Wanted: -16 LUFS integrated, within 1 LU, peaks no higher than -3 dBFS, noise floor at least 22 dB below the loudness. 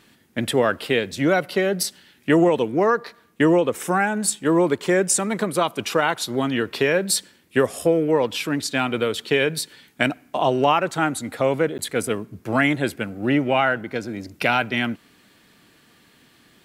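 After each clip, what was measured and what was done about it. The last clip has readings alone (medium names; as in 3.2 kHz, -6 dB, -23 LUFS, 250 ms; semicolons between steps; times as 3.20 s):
dropouts 1; longest dropout 9.9 ms; loudness -21.5 LUFS; peak level -3.5 dBFS; loudness target -16.0 LUFS
-> interpolate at 11.78 s, 9.9 ms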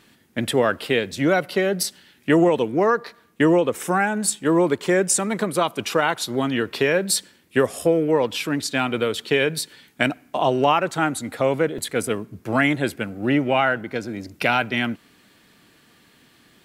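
dropouts 0; loudness -21.5 LUFS; peak level -3.5 dBFS; loudness target -16.0 LUFS
-> trim +5.5 dB; peak limiter -3 dBFS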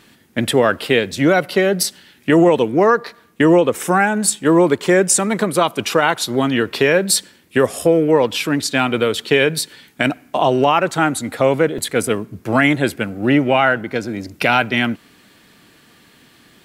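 loudness -16.5 LUFS; peak level -3.0 dBFS; noise floor -51 dBFS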